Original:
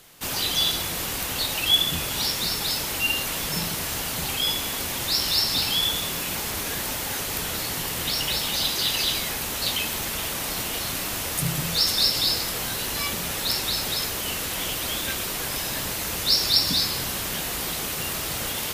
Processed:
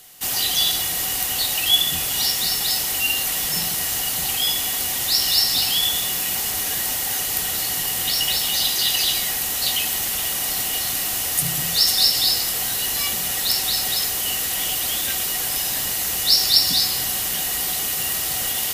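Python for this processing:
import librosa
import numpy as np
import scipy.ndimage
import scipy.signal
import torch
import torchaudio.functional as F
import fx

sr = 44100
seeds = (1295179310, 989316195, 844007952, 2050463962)

y = fx.high_shelf(x, sr, hz=3700.0, db=12.0)
y = fx.small_body(y, sr, hz=(750.0, 1900.0, 2900.0), ring_ms=85, db=13)
y = y * librosa.db_to_amplitude(-3.5)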